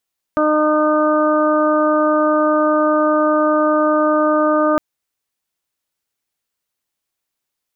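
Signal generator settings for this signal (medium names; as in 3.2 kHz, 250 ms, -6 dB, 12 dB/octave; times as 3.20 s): steady additive tone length 4.41 s, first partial 305 Hz, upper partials 1.5/-9/-1/-11 dB, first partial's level -17 dB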